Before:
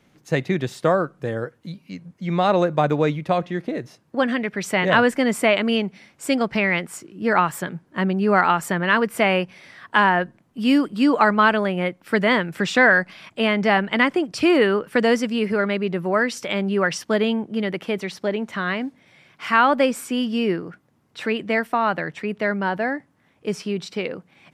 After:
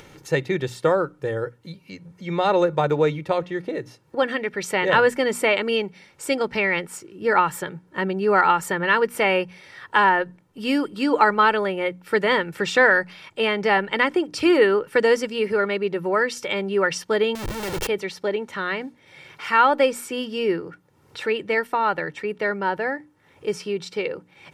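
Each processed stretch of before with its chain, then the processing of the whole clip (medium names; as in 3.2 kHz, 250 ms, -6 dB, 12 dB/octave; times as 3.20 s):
17.35–17.87 s: resonant high shelf 5.2 kHz +13.5 dB, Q 1.5 + Schmitt trigger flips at -42 dBFS
whole clip: comb 2.2 ms, depth 55%; upward compressor, threshold -33 dBFS; hum notches 60/120/180/240/300 Hz; trim -1.5 dB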